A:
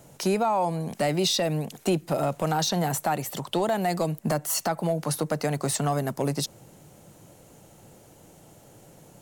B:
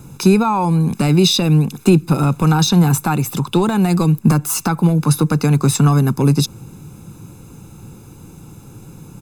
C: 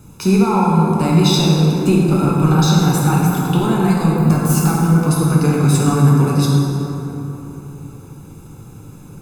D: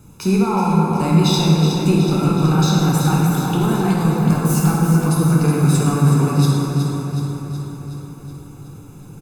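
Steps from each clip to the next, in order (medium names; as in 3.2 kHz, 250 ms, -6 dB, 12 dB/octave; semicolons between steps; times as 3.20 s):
bass shelf 390 Hz +7.5 dB; comb 0.8 ms, depth 84%; trim +5.5 dB
plate-style reverb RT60 3.6 s, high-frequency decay 0.4×, DRR -5 dB; trim -5.5 dB
feedback delay 371 ms, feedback 59%, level -8 dB; trim -3 dB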